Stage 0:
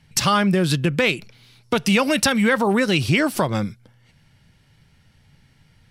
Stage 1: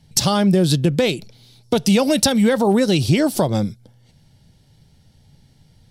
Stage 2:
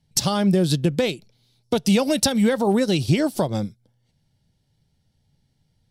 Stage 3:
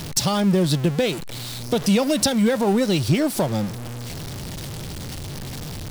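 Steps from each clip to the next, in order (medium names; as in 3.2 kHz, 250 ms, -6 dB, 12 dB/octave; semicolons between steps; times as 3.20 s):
high-order bell 1.7 kHz -10.5 dB; trim +3.5 dB
upward expansion 1.5:1, over -36 dBFS; trim -2 dB
jump at every zero crossing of -24.5 dBFS; trim -1.5 dB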